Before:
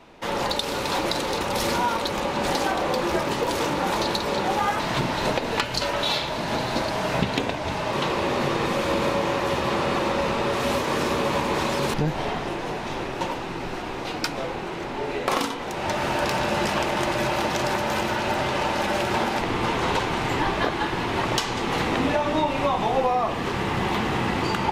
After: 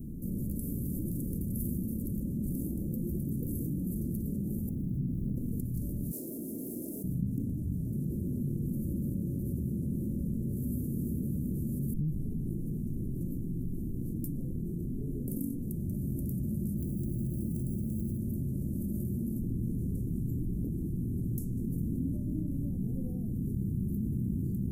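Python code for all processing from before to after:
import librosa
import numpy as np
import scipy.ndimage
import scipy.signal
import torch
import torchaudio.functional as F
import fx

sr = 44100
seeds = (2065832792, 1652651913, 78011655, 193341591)

y = fx.chain(x, sr, fx.median_filter(points=15),
    fx.high_shelf(hz=4400.0, db=-12.0), at=(4.69, 5.37))
y = fx.chain(y, sr, fx.highpass(hz=330.0, slope=24),
    fx.transformer_sat(knee_hz=4000.0), at=(6.11, 7.04))
y = fx.chain(y, sr, fx.high_shelf(hz=8100.0, db=9.5),
    fx.resample_linear(factor=3), at=(16.78, 18.18))
y = scipy.signal.sosfilt(scipy.signal.cheby2(4, 80, [1000.0, 3500.0], 'bandstop', fs=sr, output='sos'), y)
y = fx.env_flatten(y, sr, amount_pct=70)
y = y * 10.0 ** (-7.5 / 20.0)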